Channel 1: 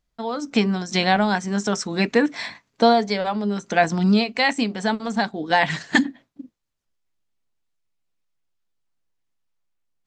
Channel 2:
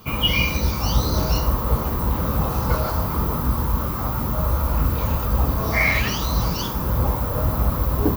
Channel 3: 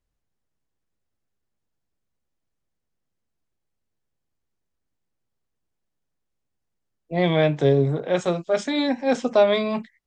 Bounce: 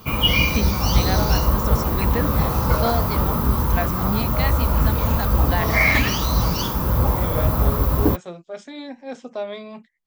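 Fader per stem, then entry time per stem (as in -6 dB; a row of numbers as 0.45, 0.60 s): -8.5, +2.0, -12.0 dB; 0.00, 0.00, 0.00 s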